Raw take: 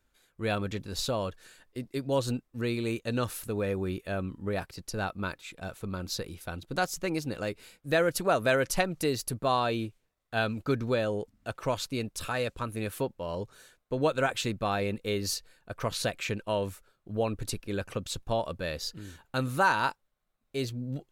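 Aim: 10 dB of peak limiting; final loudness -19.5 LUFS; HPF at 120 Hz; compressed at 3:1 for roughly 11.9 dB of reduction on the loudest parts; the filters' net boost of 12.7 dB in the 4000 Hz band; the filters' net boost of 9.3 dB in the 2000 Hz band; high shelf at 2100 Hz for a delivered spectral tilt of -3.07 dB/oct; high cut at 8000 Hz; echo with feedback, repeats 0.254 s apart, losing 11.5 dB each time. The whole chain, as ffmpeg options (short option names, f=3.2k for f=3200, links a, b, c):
-af "highpass=120,lowpass=8k,equalizer=f=2k:t=o:g=8,highshelf=f=2.1k:g=5.5,equalizer=f=4k:t=o:g=8,acompressor=threshold=-30dB:ratio=3,alimiter=limit=-21dB:level=0:latency=1,aecho=1:1:254|508|762:0.266|0.0718|0.0194,volume=15dB"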